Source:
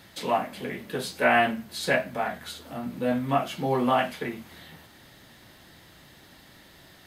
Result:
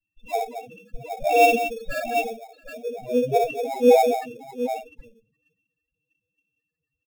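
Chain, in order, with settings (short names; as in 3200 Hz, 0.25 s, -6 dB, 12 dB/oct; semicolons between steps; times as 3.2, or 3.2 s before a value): minimum comb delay 1.1 ms; small resonant body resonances 470/2700 Hz, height 16 dB, ringing for 55 ms; on a send: tapped delay 61/98/226/676/769 ms -4/-17.5/-5.5/-15.5/-4 dB; on the sum: loudest bins only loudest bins 4; bell 83 Hz -9.5 dB 1.7 oct; in parallel at -6.5 dB: sample-rate reducer 3000 Hz, jitter 0%; on the sum: bell 930 Hz -7 dB 0.28 oct; three-band expander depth 100%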